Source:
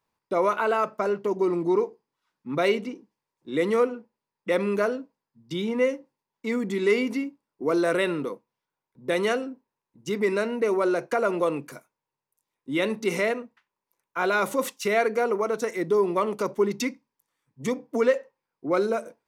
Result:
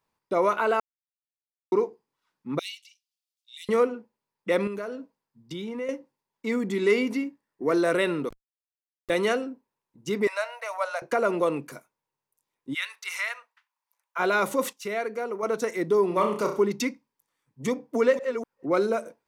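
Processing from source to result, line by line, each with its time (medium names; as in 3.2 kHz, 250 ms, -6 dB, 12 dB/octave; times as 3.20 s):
0.80–1.72 s: mute
2.59–3.69 s: steep high-pass 2.9 kHz
4.67–5.89 s: compression 2.5:1, threshold -34 dBFS
7.26–7.78 s: peaking EQ 1.8 kHz +13.5 dB 0.23 oct
8.29–9.10 s: Schmitt trigger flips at -27 dBFS
10.27–11.02 s: steep high-pass 570 Hz 72 dB/octave
12.73–14.18 s: high-pass 1.5 kHz -> 590 Hz 24 dB/octave
14.73–15.43 s: gain -7 dB
16.08–16.60 s: flutter echo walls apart 5.7 m, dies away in 0.42 s
17.70–18.66 s: chunks repeated in reverse 246 ms, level -8.5 dB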